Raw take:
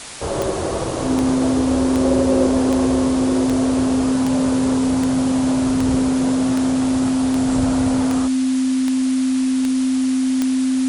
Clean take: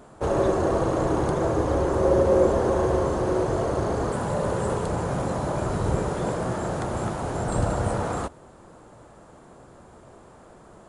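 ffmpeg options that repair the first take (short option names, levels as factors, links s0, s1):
-af "adeclick=t=4,bandreject=f=260:w=30,afwtdn=0.025"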